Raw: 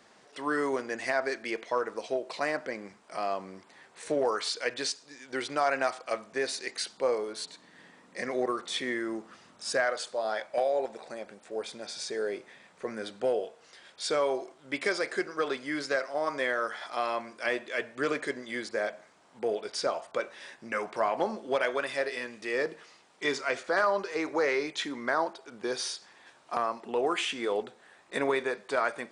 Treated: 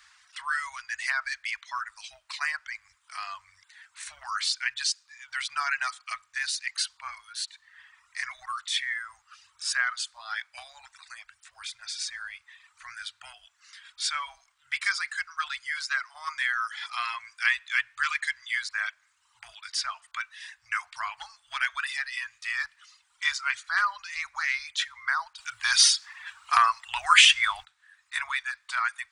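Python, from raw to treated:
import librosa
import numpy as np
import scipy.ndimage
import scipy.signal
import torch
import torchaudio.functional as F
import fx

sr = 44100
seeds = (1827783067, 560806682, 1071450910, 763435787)

y = fx.peak_eq(x, sr, hz=2300.0, db=4.0, octaves=1.9, at=(16.77, 18.94))
y = fx.edit(y, sr, fx.clip_gain(start_s=25.38, length_s=2.27, db=11.5), tone=tone)
y = fx.dereverb_blind(y, sr, rt60_s=0.97)
y = scipy.signal.sosfilt(scipy.signal.cheby2(4, 60, [180.0, 510.0], 'bandstop', fs=sr, output='sos'), y)
y = y * 10.0 ** (5.5 / 20.0)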